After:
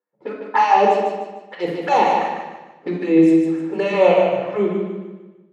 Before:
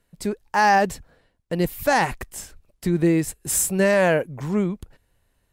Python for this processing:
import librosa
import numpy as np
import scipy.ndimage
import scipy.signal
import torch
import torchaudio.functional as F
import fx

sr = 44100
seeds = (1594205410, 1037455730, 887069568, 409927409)

p1 = scipy.signal.sosfilt(scipy.signal.butter(2, 3100.0, 'lowpass', fs=sr, output='sos'), x)
p2 = fx.env_lowpass(p1, sr, base_hz=530.0, full_db=-18.5)
p3 = scipy.signal.sosfilt(scipy.signal.butter(2, 130.0, 'highpass', fs=sr, output='sos'), p2)
p4 = fx.env_flanger(p3, sr, rest_ms=10.4, full_db=-18.0)
p5 = fx.filter_lfo_highpass(p4, sr, shape='sine', hz=3.4, low_hz=320.0, high_hz=1600.0, q=0.97)
p6 = p5 + fx.echo_feedback(p5, sr, ms=151, feedback_pct=40, wet_db=-5.0, dry=0)
p7 = fx.room_shoebox(p6, sr, seeds[0], volume_m3=1900.0, walls='furnished', distance_m=4.2)
y = F.gain(torch.from_numpy(p7), 3.5).numpy()